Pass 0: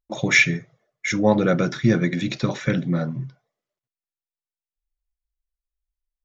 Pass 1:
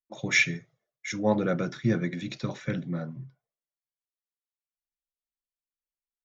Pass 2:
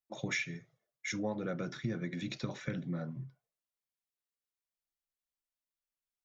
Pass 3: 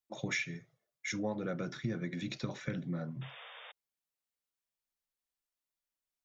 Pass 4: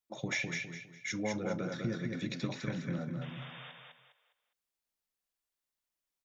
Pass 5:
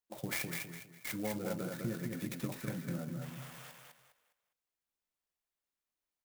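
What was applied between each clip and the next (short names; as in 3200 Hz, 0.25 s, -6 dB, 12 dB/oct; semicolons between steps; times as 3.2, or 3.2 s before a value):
three-band expander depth 40%; gain -8.5 dB
compressor 6:1, threshold -31 dBFS, peak gain reduction 13 dB; gain -2 dB
painted sound noise, 3.21–3.72, 440–3700 Hz -51 dBFS
feedback echo 0.204 s, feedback 32%, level -4 dB
clock jitter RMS 0.061 ms; gain -2.5 dB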